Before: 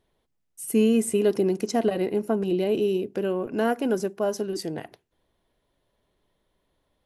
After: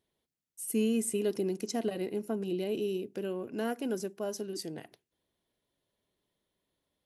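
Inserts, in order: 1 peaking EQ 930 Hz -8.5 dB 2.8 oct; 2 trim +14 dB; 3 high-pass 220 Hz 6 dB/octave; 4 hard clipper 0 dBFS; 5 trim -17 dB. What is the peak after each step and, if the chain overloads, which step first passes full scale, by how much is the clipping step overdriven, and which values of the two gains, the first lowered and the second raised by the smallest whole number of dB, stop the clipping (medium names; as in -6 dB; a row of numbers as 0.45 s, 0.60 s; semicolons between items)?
-14.5 dBFS, -0.5 dBFS, -3.0 dBFS, -3.0 dBFS, -20.0 dBFS; nothing clips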